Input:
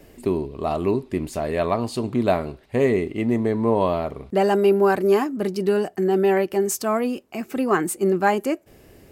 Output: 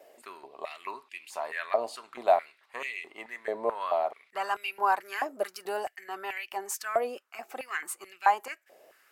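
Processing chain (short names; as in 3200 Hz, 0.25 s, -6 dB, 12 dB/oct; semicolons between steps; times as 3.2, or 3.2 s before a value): vibrato 4.2 Hz 25 cents; 5.28–5.93 high shelf 5100 Hz -> 9700 Hz +9 dB; stepped high-pass 4.6 Hz 610–2500 Hz; gain -8.5 dB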